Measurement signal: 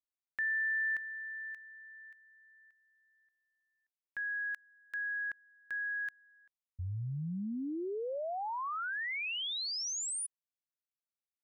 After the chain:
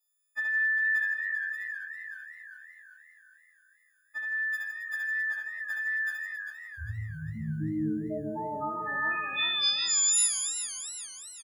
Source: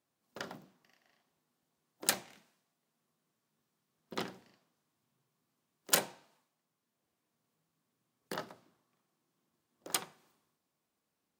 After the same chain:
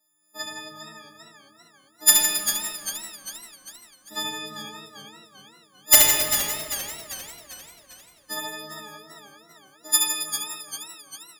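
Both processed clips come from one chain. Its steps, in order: partials quantised in pitch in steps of 6 st; integer overflow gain 3.5 dB; reverse bouncing-ball echo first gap 70 ms, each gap 1.25×, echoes 5; simulated room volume 2700 m³, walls mixed, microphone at 2.5 m; modulated delay 396 ms, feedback 52%, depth 98 cents, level -10 dB; trim -2 dB

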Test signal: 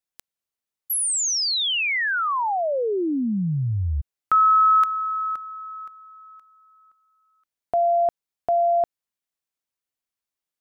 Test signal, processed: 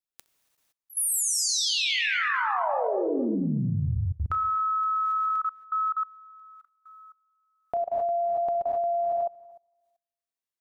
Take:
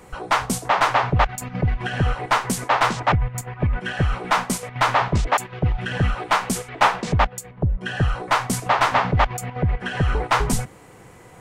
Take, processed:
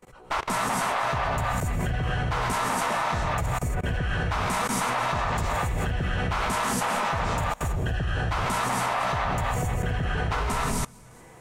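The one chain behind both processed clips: backward echo that repeats 114 ms, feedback 42%, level -7.5 dB; gated-style reverb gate 300 ms rising, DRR -3 dB; level held to a coarse grid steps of 23 dB; trim -3 dB

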